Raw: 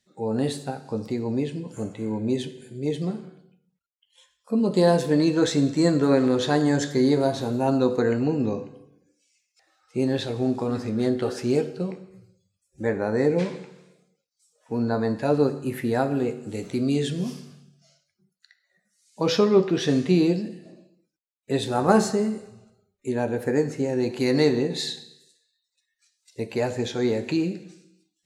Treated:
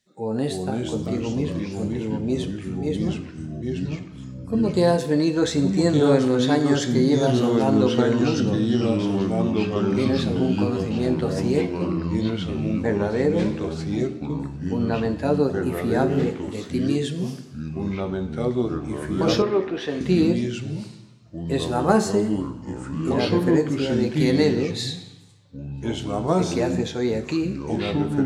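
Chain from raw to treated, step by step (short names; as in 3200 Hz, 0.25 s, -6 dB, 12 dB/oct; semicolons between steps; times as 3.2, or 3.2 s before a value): echoes that change speed 0.264 s, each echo -3 st, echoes 3; 19.42–20.01 three-band isolator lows -13 dB, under 360 Hz, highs -13 dB, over 3400 Hz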